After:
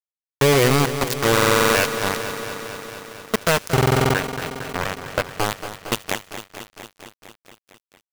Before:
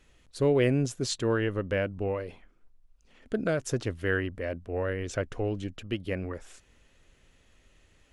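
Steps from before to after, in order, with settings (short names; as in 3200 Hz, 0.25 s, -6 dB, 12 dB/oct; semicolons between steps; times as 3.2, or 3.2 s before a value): bit-crush 4-bit; 3.74–5.33 high shelf 3600 Hz -9 dB; thin delay 76 ms, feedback 48%, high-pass 3500 Hz, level -20 dB; dynamic EQ 340 Hz, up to -5 dB, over -40 dBFS, Q 1.8; stuck buffer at 1.33/3.73, samples 2048, times 8; lo-fi delay 0.228 s, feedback 80%, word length 8-bit, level -11 dB; gain +8 dB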